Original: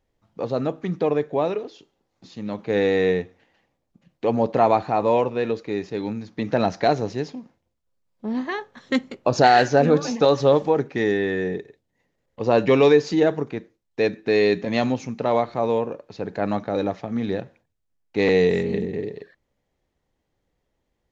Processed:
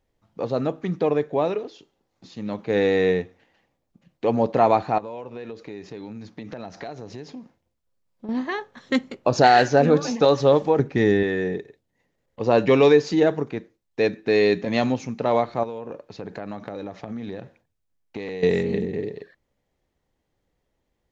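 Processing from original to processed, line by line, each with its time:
4.98–8.29 compressor 5:1, threshold -33 dBFS
10.79–11.23 low shelf 200 Hz +11 dB
15.63–18.43 compressor 12:1, threshold -28 dBFS

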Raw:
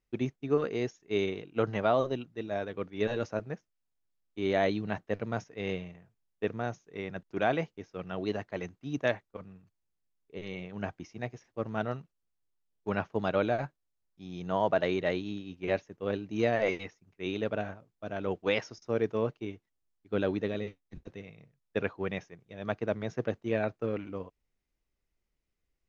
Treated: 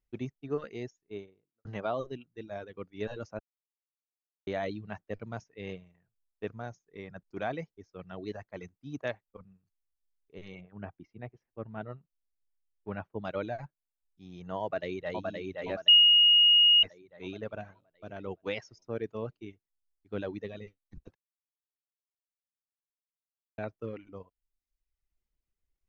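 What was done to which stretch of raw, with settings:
0.72–1.65 studio fade out
3.39–4.47 mute
6.63–9.01 notch 2800 Hz
10.61–13.25 air absorption 330 m
14.62–15.24 echo throw 0.52 s, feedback 55%, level -2.5 dB
15.88–16.83 bleep 2870 Hz -7.5 dBFS
21.15–23.58 mute
whole clip: reverb removal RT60 0.87 s; low shelf 78 Hz +9 dB; gain -6 dB

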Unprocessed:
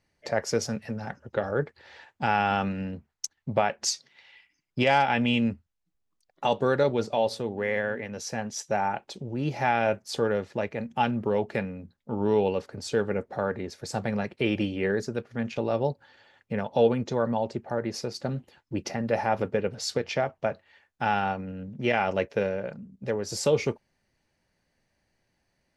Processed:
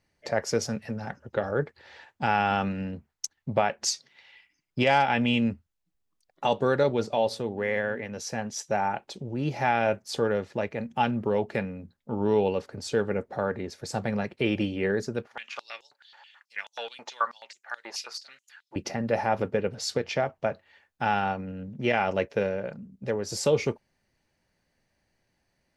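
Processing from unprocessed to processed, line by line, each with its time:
15.27–18.76 stepped high-pass 9.3 Hz 870–6600 Hz

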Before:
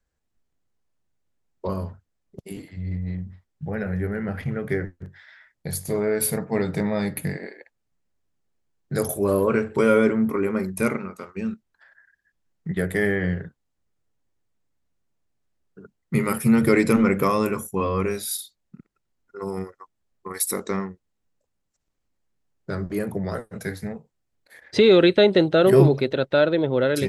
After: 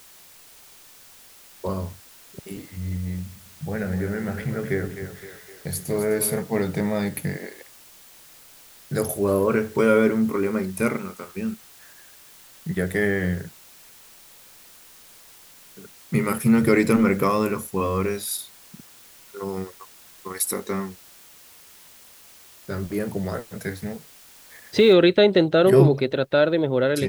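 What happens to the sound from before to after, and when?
3.25–6.42 split-band echo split 350 Hz, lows 0.102 s, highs 0.257 s, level -9 dB
20.54–22.85 notch comb 160 Hz
24.93 noise floor step -49 dB -69 dB

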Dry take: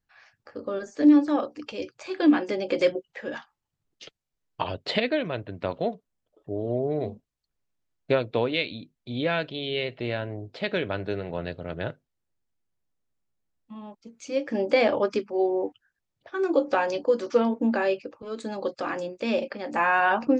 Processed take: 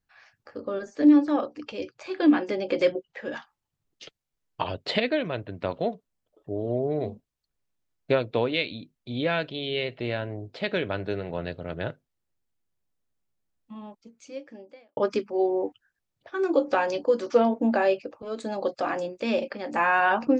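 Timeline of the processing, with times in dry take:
0.61–3.25 air absorption 59 m
13.85–14.97 fade out quadratic
17.3–19.06 bell 690 Hz +7.5 dB 0.43 oct

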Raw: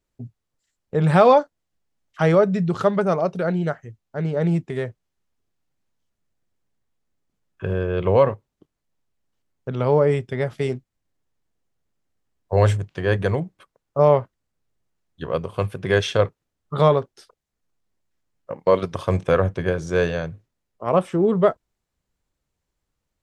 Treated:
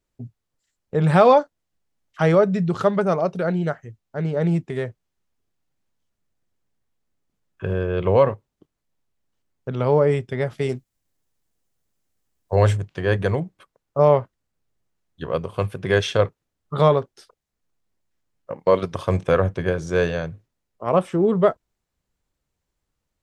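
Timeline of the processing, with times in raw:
10.69–12.56 high shelf 5200 Hz +10.5 dB

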